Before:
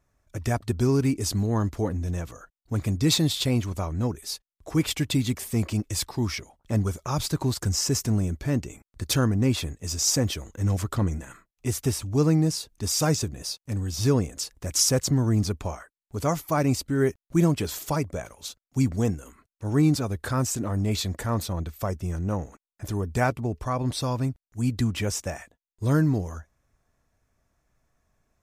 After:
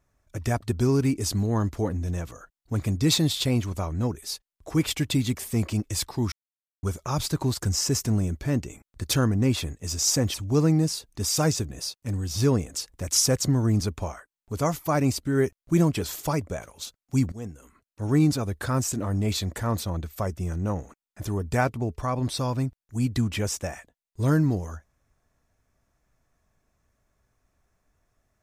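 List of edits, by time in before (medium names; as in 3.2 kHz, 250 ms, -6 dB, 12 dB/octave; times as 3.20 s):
6.32–6.83 s: mute
10.34–11.97 s: delete
18.95–19.69 s: fade in linear, from -17.5 dB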